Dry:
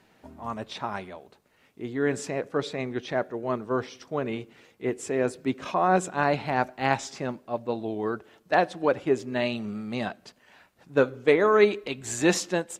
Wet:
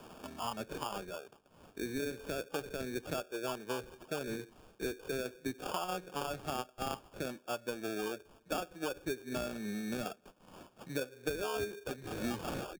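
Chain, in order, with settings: tape stop on the ending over 0.70 s; low-pass 3.8 kHz 12 dB/octave; bass shelf 250 Hz -8.5 dB; compression 3:1, threshold -34 dBFS, peak gain reduction 13.5 dB; sample-and-hold 22×; spectral noise reduction 8 dB; three bands compressed up and down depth 70%; trim -2 dB

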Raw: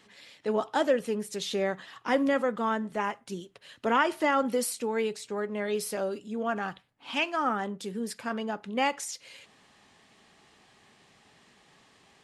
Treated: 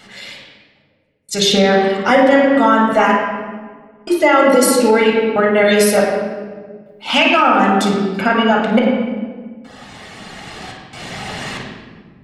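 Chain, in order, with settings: recorder AGC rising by 6.8 dB/s; reverb removal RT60 1.1 s; trance gate "xx....xxxxx.x" 70 bpm -60 dB; flutter echo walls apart 9.5 m, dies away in 0.29 s; reverberation RT60 1.6 s, pre-delay 12 ms, DRR -1.5 dB; loudness maximiser +14.5 dB; trim -1.5 dB

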